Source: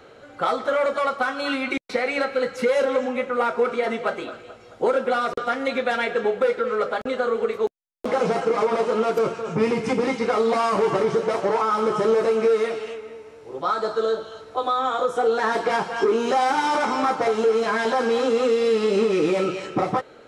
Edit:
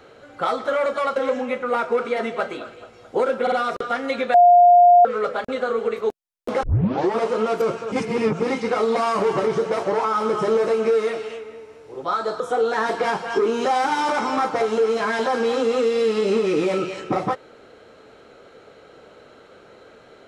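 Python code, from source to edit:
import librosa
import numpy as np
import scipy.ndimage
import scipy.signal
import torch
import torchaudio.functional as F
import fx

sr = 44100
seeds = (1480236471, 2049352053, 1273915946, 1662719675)

y = fx.edit(x, sr, fx.cut(start_s=1.16, length_s=1.67),
    fx.stutter(start_s=5.09, slice_s=0.05, count=3),
    fx.bleep(start_s=5.91, length_s=0.71, hz=706.0, db=-8.0),
    fx.tape_start(start_s=8.2, length_s=0.53),
    fx.reverse_span(start_s=9.49, length_s=0.48),
    fx.cut(start_s=13.97, length_s=1.09), tone=tone)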